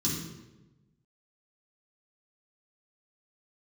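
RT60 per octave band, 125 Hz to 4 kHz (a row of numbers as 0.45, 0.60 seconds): 1.5, 1.3, 1.2, 0.90, 0.85, 0.75 seconds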